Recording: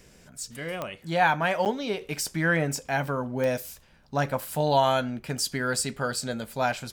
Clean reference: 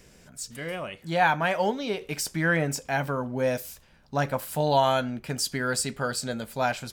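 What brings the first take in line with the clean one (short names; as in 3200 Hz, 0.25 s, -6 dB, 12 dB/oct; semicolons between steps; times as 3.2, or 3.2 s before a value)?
de-click; interpolate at 1.65, 8.7 ms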